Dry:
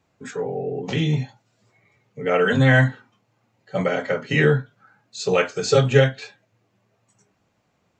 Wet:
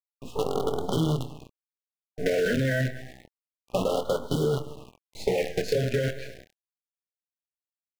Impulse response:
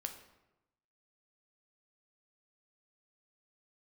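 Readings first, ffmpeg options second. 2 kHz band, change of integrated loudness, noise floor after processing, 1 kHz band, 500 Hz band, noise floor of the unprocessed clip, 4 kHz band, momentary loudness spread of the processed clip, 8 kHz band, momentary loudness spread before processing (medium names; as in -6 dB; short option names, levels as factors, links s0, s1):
-11.5 dB, -7.0 dB, under -85 dBFS, -7.0 dB, -5.5 dB, -69 dBFS, -6.5 dB, 15 LU, -6.0 dB, 14 LU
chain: -filter_complex "[0:a]acrossover=split=220|1800[s0][s1][s2];[s1]dynaudnorm=f=130:g=7:m=1.78[s3];[s0][s3][s2]amix=inputs=3:normalize=0,agate=range=0.316:threshold=0.00891:ratio=16:detection=peak,aecho=1:1:104|208|312|416:0.158|0.065|0.0266|0.0109,aeval=exprs='val(0)+0.00398*(sin(2*PI*60*n/s)+sin(2*PI*2*60*n/s)/2+sin(2*PI*3*60*n/s)/3+sin(2*PI*4*60*n/s)/4+sin(2*PI*5*60*n/s)/5)':c=same,lowpass=7000,acrusher=bits=4:dc=4:mix=0:aa=0.000001,equalizer=f=1300:t=o:w=0.77:g=-2.5,alimiter=limit=0.376:level=0:latency=1:release=18,highshelf=f=4500:g=-10.5,acompressor=threshold=0.0794:ratio=6,asplit=2[s4][s5];[s5]adelay=25,volume=0.266[s6];[s4][s6]amix=inputs=2:normalize=0,afftfilt=real='re*(1-between(b*sr/1024,970*pow(2100/970,0.5+0.5*sin(2*PI*0.29*pts/sr))/1.41,970*pow(2100/970,0.5+0.5*sin(2*PI*0.29*pts/sr))*1.41))':imag='im*(1-between(b*sr/1024,970*pow(2100/970,0.5+0.5*sin(2*PI*0.29*pts/sr))/1.41,970*pow(2100/970,0.5+0.5*sin(2*PI*0.29*pts/sr))*1.41))':win_size=1024:overlap=0.75"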